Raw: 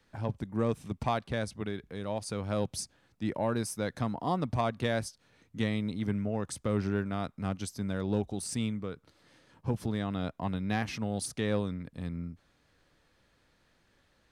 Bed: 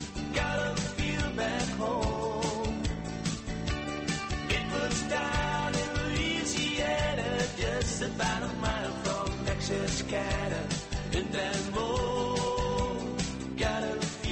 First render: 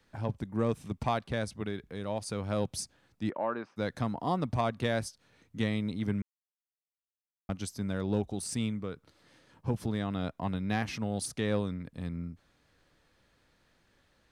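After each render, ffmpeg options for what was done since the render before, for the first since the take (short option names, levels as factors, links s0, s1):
-filter_complex "[0:a]asplit=3[s0][s1][s2];[s0]afade=t=out:st=3.29:d=0.02[s3];[s1]highpass=350,equalizer=f=440:t=q:w=4:g=-4,equalizer=f=1200:t=q:w=4:g=5,equalizer=f=2100:t=q:w=4:g=-4,lowpass=f=2600:w=0.5412,lowpass=f=2600:w=1.3066,afade=t=in:st=3.29:d=0.02,afade=t=out:st=3.76:d=0.02[s4];[s2]afade=t=in:st=3.76:d=0.02[s5];[s3][s4][s5]amix=inputs=3:normalize=0,asplit=3[s6][s7][s8];[s6]atrim=end=6.22,asetpts=PTS-STARTPTS,afade=t=out:st=6.216:d=0.004:c=hsin[s9];[s7]atrim=start=6.22:end=7.49,asetpts=PTS-STARTPTS,volume=0[s10];[s8]atrim=start=7.49,asetpts=PTS-STARTPTS,afade=t=in:d=0.004:c=hsin[s11];[s9][s10][s11]concat=n=3:v=0:a=1"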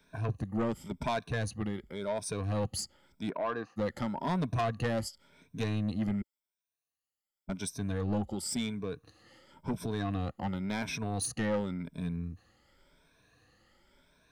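-af "afftfilt=real='re*pow(10,15/40*sin(2*PI*(1.6*log(max(b,1)*sr/1024/100)/log(2)-(0.92)*(pts-256)/sr)))':imag='im*pow(10,15/40*sin(2*PI*(1.6*log(max(b,1)*sr/1024/100)/log(2)-(0.92)*(pts-256)/sr)))':win_size=1024:overlap=0.75,asoftclip=type=tanh:threshold=0.0531"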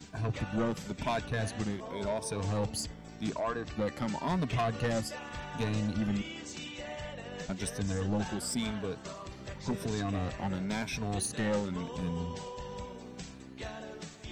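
-filter_complex "[1:a]volume=0.251[s0];[0:a][s0]amix=inputs=2:normalize=0"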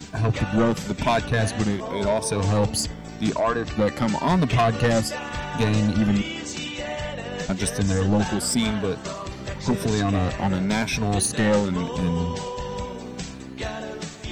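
-af "volume=3.55"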